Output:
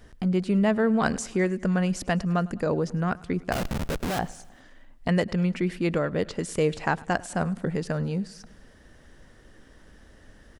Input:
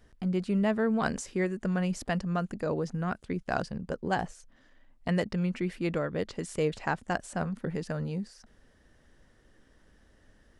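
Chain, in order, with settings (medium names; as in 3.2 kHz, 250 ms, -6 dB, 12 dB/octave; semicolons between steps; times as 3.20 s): in parallel at -1 dB: compression 4:1, threshold -44 dBFS, peak gain reduction 18 dB; 3.52–4.19 s: on the sum: Schmitt trigger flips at -34 dBFS; feedback delay 103 ms, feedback 60%, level -22.5 dB; trim +3.5 dB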